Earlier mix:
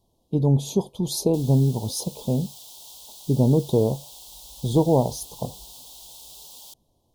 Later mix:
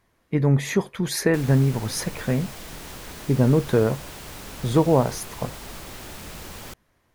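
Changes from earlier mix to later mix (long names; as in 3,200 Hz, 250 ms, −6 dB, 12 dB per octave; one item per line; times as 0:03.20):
background: remove high-pass filter 1,400 Hz 12 dB per octave
master: remove Chebyshev band-stop filter 880–3,400 Hz, order 3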